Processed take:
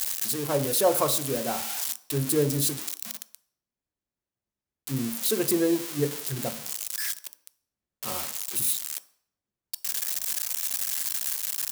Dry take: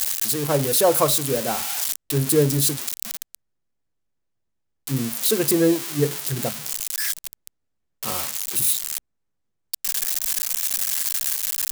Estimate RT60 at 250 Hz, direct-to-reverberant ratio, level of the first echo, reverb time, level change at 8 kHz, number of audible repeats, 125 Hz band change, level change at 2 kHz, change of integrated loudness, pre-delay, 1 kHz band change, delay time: 0.50 s, 11.5 dB, none, 0.60 s, -5.5 dB, none, -6.5 dB, -5.5 dB, -5.5 dB, 3 ms, -4.5 dB, none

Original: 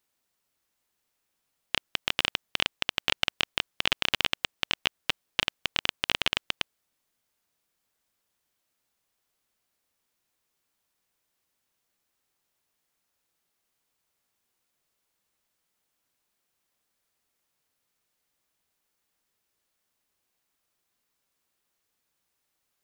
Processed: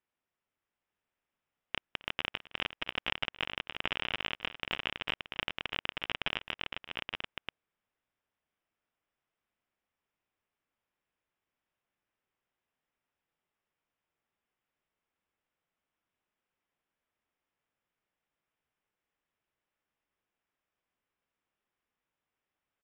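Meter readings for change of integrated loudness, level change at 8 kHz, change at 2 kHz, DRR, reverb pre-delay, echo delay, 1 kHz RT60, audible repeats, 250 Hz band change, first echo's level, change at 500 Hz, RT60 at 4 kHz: -7.5 dB, under -20 dB, -5.5 dB, none, none, 0.264 s, none, 3, -4.5 dB, -20.0 dB, -4.5 dB, none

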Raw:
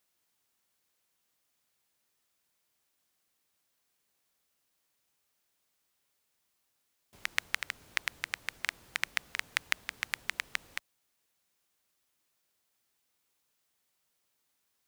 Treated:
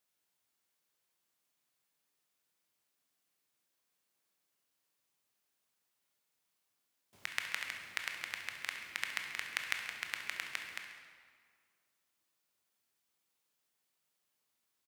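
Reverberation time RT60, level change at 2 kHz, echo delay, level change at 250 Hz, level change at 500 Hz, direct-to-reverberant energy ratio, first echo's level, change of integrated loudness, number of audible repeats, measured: 1.9 s, -4.0 dB, 68 ms, -3.5 dB, -4.0 dB, 2.0 dB, -12.0 dB, -4.0 dB, 1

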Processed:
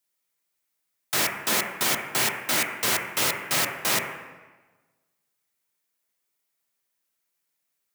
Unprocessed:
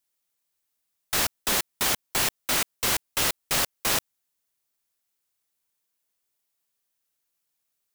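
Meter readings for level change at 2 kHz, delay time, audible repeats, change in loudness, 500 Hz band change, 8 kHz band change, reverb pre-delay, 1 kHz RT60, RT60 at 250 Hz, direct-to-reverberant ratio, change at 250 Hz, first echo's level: +3.5 dB, none, none, +1.0 dB, +2.0 dB, 0.0 dB, 3 ms, 1.2 s, 1.4 s, 0.5 dB, +2.0 dB, none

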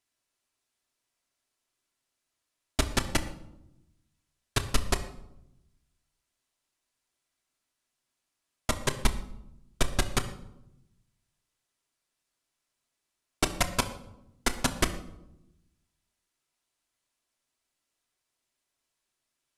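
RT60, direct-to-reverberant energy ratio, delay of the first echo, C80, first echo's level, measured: 0.85 s, 5.5 dB, none, 14.5 dB, none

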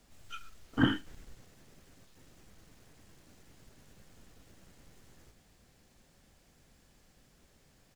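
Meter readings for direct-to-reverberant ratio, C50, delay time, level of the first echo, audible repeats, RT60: none, none, 81 ms, -23.0 dB, 1, none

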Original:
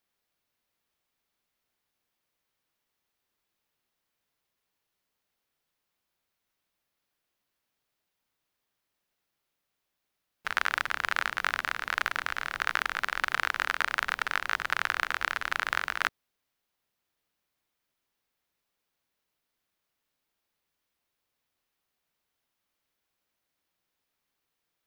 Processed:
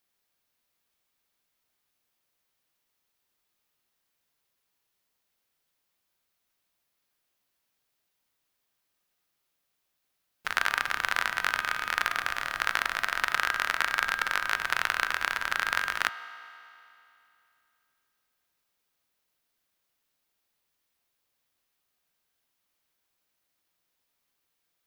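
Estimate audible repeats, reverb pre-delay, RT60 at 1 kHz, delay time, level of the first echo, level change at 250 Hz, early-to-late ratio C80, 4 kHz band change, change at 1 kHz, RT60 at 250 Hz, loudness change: none, 3 ms, 2.8 s, none, none, 0.0 dB, 11.0 dB, +2.5 dB, +1.0 dB, 2.8 s, +1.5 dB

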